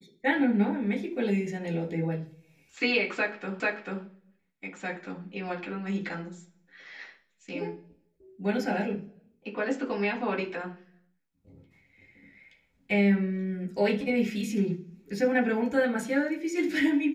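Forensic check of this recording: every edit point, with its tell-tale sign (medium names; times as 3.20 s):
3.60 s: repeat of the last 0.44 s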